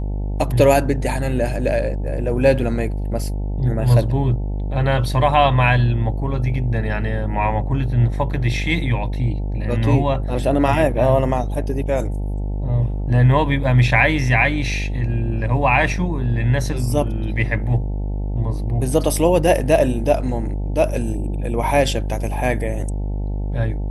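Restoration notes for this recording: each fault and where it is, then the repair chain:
buzz 50 Hz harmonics 18 -23 dBFS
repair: de-hum 50 Hz, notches 18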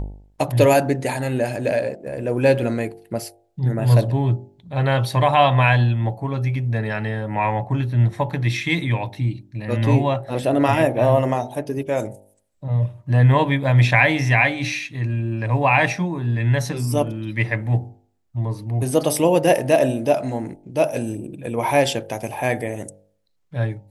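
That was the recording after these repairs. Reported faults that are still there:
nothing left

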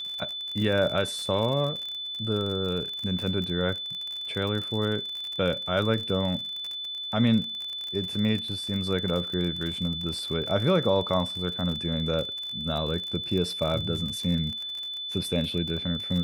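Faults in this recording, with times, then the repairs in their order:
crackle 43 per s -31 dBFS
whine 3.5 kHz -32 dBFS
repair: de-click; band-stop 3.5 kHz, Q 30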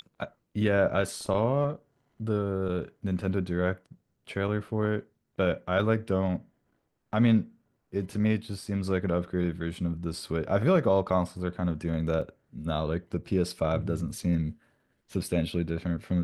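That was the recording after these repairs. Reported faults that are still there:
nothing left

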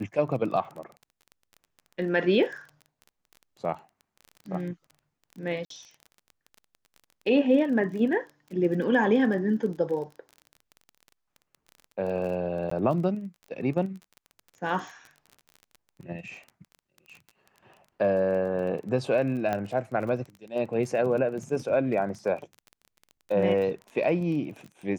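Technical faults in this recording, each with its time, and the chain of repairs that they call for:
crackle 23 per s -36 dBFS
5.65–5.70 s: dropout 53 ms
12.70–12.71 s: dropout 14 ms
19.53 s: pop -16 dBFS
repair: de-click; interpolate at 5.65 s, 53 ms; interpolate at 12.70 s, 14 ms

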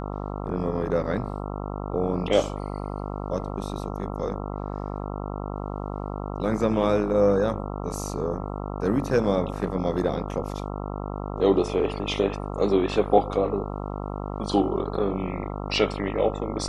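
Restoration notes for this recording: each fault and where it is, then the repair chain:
buzz 50 Hz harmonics 27 -32 dBFS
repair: de-hum 50 Hz, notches 27

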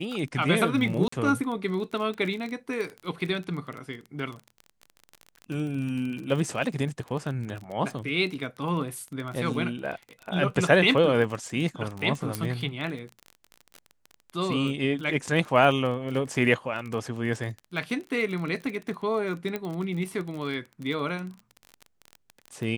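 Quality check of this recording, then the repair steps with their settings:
crackle 28 per s -32 dBFS
1.08–1.12 s: dropout 44 ms
12.35 s: pop -13 dBFS
19.56 s: pop -17 dBFS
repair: de-click; interpolate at 1.08 s, 44 ms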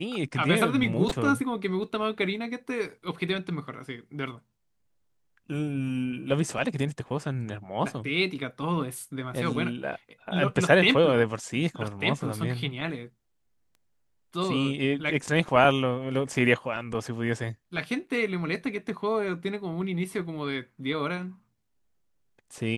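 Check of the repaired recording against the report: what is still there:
nothing left

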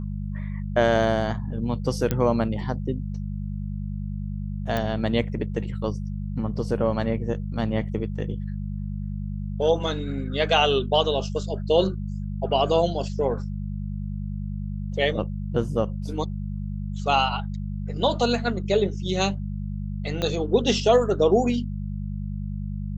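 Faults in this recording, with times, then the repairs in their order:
hum 50 Hz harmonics 4 -30 dBFS
2.11 s: pop -10 dBFS
4.77 s: pop -13 dBFS
20.22 s: pop -13 dBFS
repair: de-click; de-hum 50 Hz, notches 4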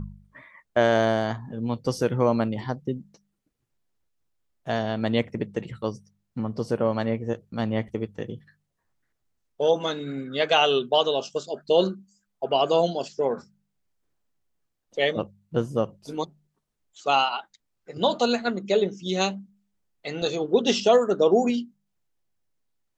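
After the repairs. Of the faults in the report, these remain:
20.22 s: pop

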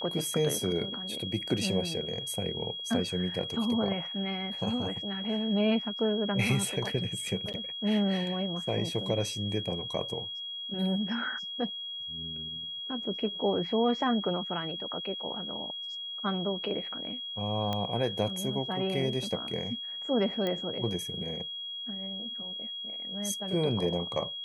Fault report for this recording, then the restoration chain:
whine 3.3 kHz -36 dBFS
7.53–7.54 s: dropout 8.6 ms
17.73 s: pop -18 dBFS
20.47 s: pop -19 dBFS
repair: de-click; band-stop 3.3 kHz, Q 30; interpolate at 7.53 s, 8.6 ms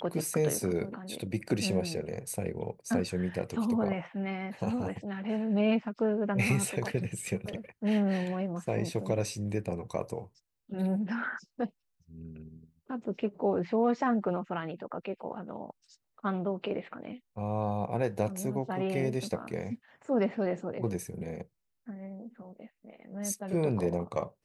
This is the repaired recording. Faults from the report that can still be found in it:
17.73 s: pop

